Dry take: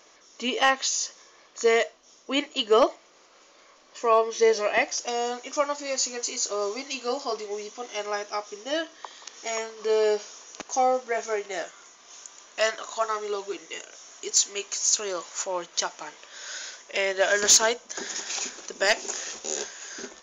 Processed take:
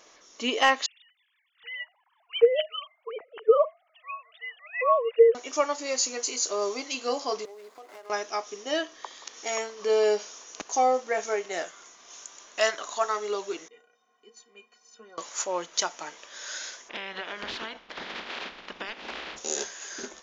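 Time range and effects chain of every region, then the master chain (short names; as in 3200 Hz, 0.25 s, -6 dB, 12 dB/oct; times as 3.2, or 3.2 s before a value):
0.86–5.35 sine-wave speech + bands offset in time highs, lows 0.78 s, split 1700 Hz
7.45–8.1 median filter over 15 samples + HPF 420 Hz + compressor 8:1, threshold -42 dBFS
13.68–15.18 HPF 87 Hz + tape spacing loss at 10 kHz 39 dB + metallic resonator 220 Hz, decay 0.2 s, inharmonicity 0.03
16.88–19.36 spectral limiter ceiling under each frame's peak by 19 dB + LPF 3500 Hz 24 dB/oct + compressor 12:1, threshold -31 dBFS
whole clip: dry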